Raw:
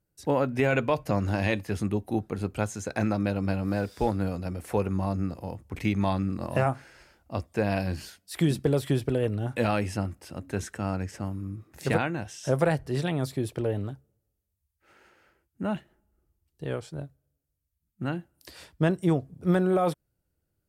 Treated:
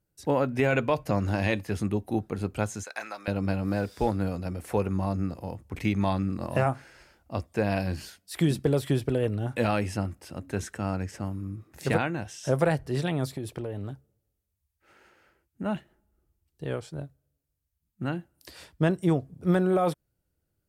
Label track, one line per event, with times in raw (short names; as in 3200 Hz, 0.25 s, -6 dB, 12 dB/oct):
2.830000	3.280000	HPF 990 Hz
13.260000	15.660000	compressor, threshold -29 dBFS